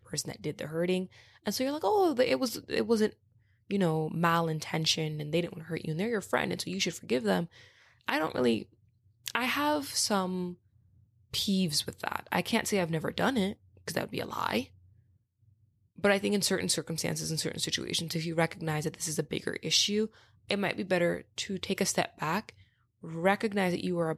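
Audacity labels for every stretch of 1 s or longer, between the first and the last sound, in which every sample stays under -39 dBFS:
14.640000	15.990000	silence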